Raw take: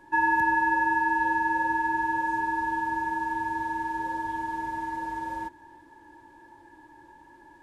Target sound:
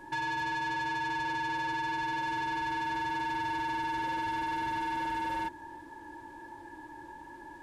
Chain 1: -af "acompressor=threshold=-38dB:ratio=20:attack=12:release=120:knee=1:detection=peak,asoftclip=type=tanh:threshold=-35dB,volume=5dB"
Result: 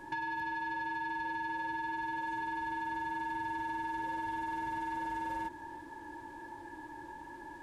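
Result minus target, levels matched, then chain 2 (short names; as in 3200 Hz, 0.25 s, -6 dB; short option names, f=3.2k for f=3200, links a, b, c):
compressor: peak gain reduction +7.5 dB
-af "acompressor=threshold=-30dB:ratio=20:attack=12:release=120:knee=1:detection=peak,asoftclip=type=tanh:threshold=-35dB,volume=5dB"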